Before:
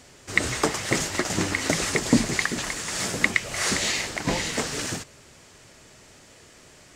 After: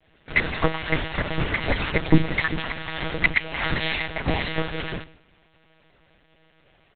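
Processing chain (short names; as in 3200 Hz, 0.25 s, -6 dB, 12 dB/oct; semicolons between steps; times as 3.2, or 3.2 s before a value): expander -43 dBFS; comb 4.4 ms, depth 98%; de-hum 85.47 Hz, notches 3; monotone LPC vocoder at 8 kHz 160 Hz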